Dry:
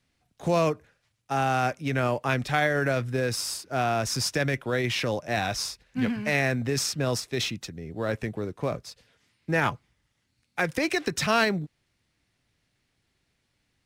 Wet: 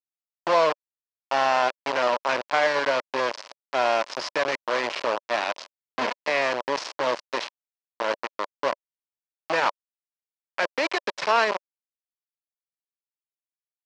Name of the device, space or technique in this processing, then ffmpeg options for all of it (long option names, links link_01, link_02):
hand-held game console: -af "acrusher=bits=3:mix=0:aa=0.000001,highpass=430,equalizer=frequency=580:width_type=q:width=4:gain=7,equalizer=frequency=1000:width_type=q:width=4:gain=8,equalizer=frequency=3600:width_type=q:width=4:gain=-4,lowpass=frequency=4900:width=0.5412,lowpass=frequency=4900:width=1.3066"